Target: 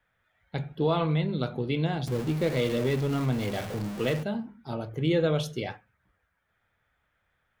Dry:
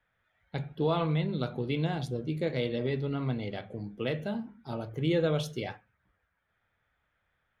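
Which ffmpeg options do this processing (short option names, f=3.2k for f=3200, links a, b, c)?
-filter_complex "[0:a]asettb=1/sr,asplit=3[a][b][c];[a]atrim=end=2.074[d];[b]atrim=start=2.07:end=4.23,asetpts=PTS-STARTPTS,afade=t=in:d=0.004:c=qsin,afade=t=out:st=2.156:d=0.004:c=qsin,aeval=exprs='val(0)+0.5*0.0178*sgn(val(0))':c=same[e];[c]atrim=start=4.226[f];[d][e]acrossfade=d=0.004:c1=hsin:c2=qsin[g];[g][f]acrossfade=d=0.004:c1=qsin:c2=hsin,volume=2.5dB"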